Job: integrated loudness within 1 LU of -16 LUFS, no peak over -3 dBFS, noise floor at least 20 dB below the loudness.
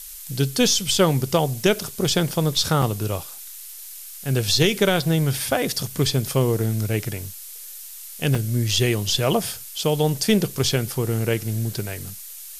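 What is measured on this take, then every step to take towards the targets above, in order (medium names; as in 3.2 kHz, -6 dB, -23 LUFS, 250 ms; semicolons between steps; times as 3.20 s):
dropouts 2; longest dropout 4.1 ms; noise floor -39 dBFS; noise floor target -42 dBFS; loudness -22.0 LUFS; peak level -5.5 dBFS; loudness target -16.0 LUFS
-> interpolate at 2.82/8.35 s, 4.1 ms; noise print and reduce 6 dB; trim +6 dB; peak limiter -3 dBFS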